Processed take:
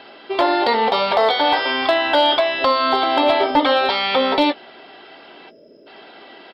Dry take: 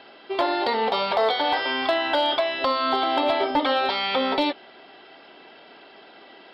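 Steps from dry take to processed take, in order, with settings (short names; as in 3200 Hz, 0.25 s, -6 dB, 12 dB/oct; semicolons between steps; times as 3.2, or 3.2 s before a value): spectral gain 5.5–5.87, 660–4900 Hz -26 dB; doubler 17 ms -13.5 dB; gain +5.5 dB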